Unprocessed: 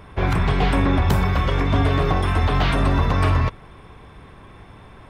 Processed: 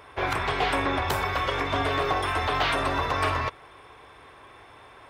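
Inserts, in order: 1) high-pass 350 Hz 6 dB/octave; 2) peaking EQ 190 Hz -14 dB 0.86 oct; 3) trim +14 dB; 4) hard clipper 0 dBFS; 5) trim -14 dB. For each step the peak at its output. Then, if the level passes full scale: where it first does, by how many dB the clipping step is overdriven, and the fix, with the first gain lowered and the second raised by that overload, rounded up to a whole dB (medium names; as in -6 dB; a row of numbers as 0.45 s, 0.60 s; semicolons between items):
-9.0 dBFS, -8.0 dBFS, +6.0 dBFS, 0.0 dBFS, -14.0 dBFS; step 3, 6.0 dB; step 3 +8 dB, step 5 -8 dB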